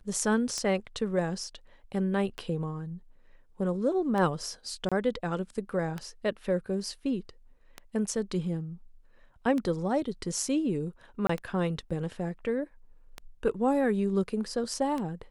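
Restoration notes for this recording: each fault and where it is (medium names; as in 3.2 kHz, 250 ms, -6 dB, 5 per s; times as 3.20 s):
tick 33 1/3 rpm -20 dBFS
4.89–4.92 s: dropout 26 ms
11.27–11.29 s: dropout 24 ms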